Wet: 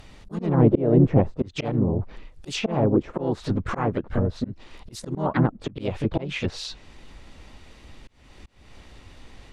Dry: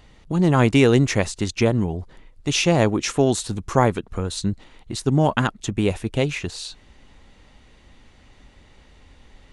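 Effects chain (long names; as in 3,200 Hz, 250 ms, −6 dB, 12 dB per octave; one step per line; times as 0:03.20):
pitch-shifted copies added +4 semitones −4 dB, +5 semitones −10 dB, +7 semitones −16 dB
volume swells 302 ms
treble cut that deepens with the level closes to 630 Hz, closed at −19.5 dBFS
level +2 dB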